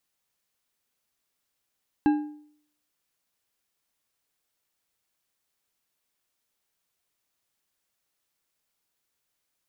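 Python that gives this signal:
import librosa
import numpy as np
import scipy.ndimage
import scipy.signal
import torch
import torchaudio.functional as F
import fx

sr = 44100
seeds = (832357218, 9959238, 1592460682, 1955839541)

y = fx.strike_metal(sr, length_s=1.55, level_db=-15, body='bar', hz=299.0, decay_s=0.61, tilt_db=9.5, modes=5)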